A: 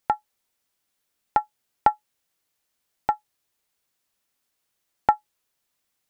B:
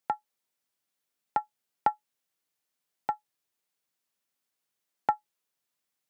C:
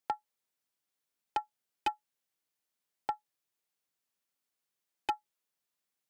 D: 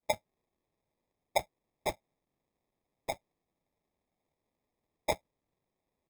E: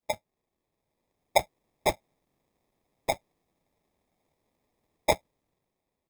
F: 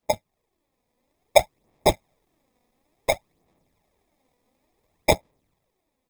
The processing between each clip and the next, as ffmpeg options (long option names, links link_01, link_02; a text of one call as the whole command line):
ffmpeg -i in.wav -af "highpass=frequency=110:width=0.5412,highpass=frequency=110:width=1.3066,volume=-7dB" out.wav
ffmpeg -i in.wav -af "aeval=exprs='0.119*(abs(mod(val(0)/0.119+3,4)-2)-1)':channel_layout=same,volume=-3.5dB" out.wav
ffmpeg -i in.wav -filter_complex "[0:a]acrossover=split=1400[link_01][link_02];[link_02]adelay=30[link_03];[link_01][link_03]amix=inputs=2:normalize=0,afftfilt=real='hypot(re,im)*cos(2*PI*random(0))':imag='hypot(re,im)*sin(2*PI*random(1))':win_size=512:overlap=0.75,acrusher=samples=30:mix=1:aa=0.000001,volume=8dB" out.wav
ffmpeg -i in.wav -af "dynaudnorm=framelen=410:gausssize=5:maxgain=8dB" out.wav
ffmpeg -i in.wav -af "aphaser=in_gain=1:out_gain=1:delay=4.1:decay=0.48:speed=0.57:type=sinusoidal,volume=5dB" out.wav